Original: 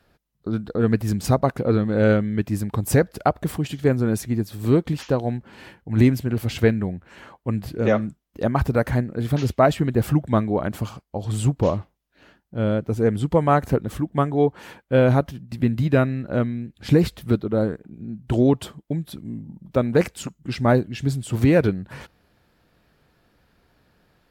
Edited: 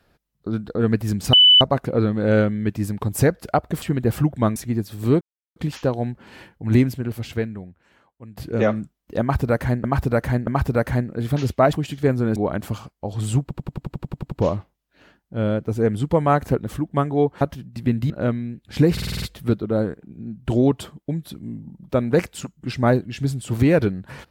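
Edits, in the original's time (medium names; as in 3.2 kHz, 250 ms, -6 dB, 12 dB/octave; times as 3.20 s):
1.33 s: add tone 2.99 kHz -8 dBFS 0.28 s
3.54–4.17 s: swap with 9.73–10.47 s
4.82 s: insert silence 0.35 s
6.02–7.63 s: fade out quadratic, to -17 dB
8.47–9.10 s: loop, 3 plays
11.53 s: stutter 0.09 s, 11 plays
14.62–15.17 s: delete
15.86–16.22 s: delete
17.04 s: stutter 0.05 s, 7 plays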